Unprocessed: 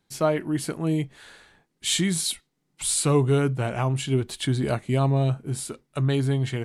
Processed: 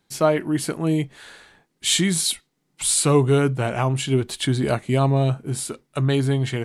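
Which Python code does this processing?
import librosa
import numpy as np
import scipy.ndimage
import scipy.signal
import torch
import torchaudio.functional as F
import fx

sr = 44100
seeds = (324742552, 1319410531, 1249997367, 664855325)

y = fx.low_shelf(x, sr, hz=140.0, db=-4.5)
y = y * librosa.db_to_amplitude(4.5)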